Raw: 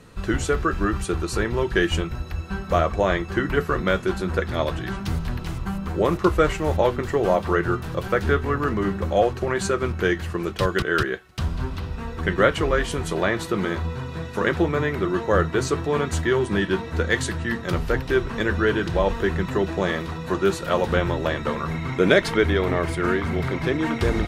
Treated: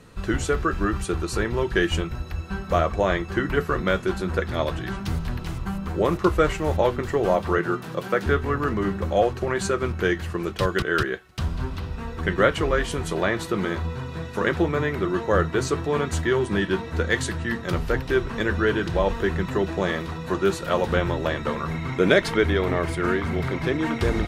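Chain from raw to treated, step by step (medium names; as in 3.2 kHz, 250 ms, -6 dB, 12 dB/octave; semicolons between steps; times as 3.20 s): 7.58–8.26 s: high-pass 140 Hz 24 dB/octave; trim -1 dB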